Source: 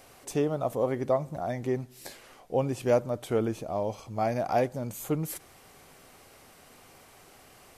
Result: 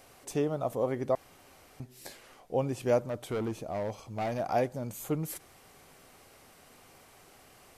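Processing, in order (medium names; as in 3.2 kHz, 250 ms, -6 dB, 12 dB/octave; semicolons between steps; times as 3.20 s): 1.15–1.80 s: room tone; 3.05–4.40 s: hard clipper -26.5 dBFS, distortion -16 dB; trim -2.5 dB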